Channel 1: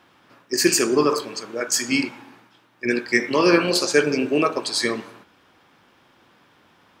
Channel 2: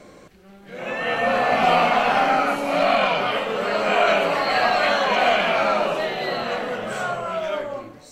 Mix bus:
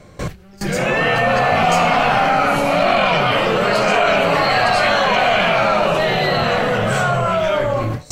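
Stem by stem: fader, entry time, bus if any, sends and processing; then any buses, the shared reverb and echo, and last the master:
-6.5 dB, 0.00 s, no send, compressor, threshold -19 dBFS, peak gain reduction 8.5 dB
+1.5 dB, 0.00 s, no send, resonant low shelf 180 Hz +10 dB, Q 1.5; fast leveller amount 70%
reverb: off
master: gate with hold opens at -12 dBFS

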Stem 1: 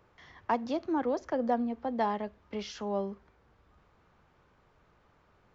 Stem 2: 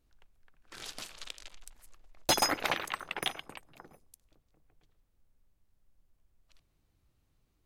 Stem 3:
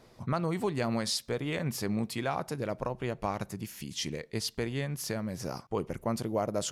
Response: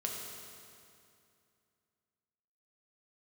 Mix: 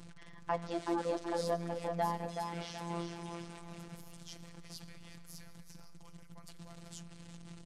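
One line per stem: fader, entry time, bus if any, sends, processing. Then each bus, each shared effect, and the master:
-4.0 dB, 0.00 s, send -15 dB, echo send -4.5 dB, dry
-10.5 dB, 0.00 s, no send, echo send -13.5 dB, infinite clipping; Chebyshev low-pass 9100 Hz, order 4; bell 170 Hz +15 dB 0.53 oct
-15.0 dB, 0.30 s, send -8 dB, echo send -12.5 dB, passive tone stack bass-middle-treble 10-0-10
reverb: on, RT60 2.5 s, pre-delay 4 ms
echo: feedback echo 0.375 s, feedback 35%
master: robotiser 170 Hz

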